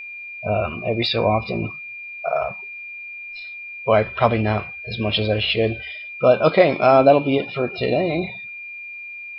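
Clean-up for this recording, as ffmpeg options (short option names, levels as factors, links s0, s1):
-af "bandreject=f=2400:w=30,agate=range=0.0891:threshold=0.0447"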